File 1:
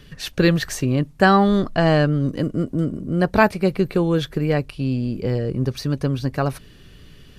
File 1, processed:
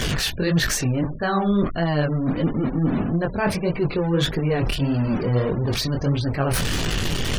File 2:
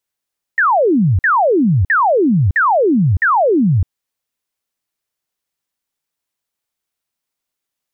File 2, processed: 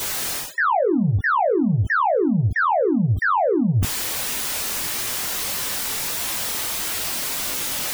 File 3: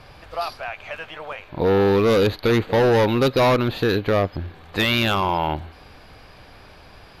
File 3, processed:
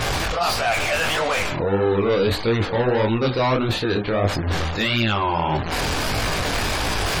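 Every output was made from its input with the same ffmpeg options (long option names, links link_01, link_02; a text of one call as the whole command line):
ffmpeg -i in.wav -af "aeval=exprs='val(0)+0.5*0.0841*sgn(val(0))':channel_layout=same,areverse,acompressor=threshold=-23dB:ratio=8,areverse,flanger=delay=17.5:depth=7.9:speed=1.6,afftfilt=real='re*gte(hypot(re,im),0.01)':imag='im*gte(hypot(re,im),0.01)':win_size=1024:overlap=0.75,volume=7.5dB" out.wav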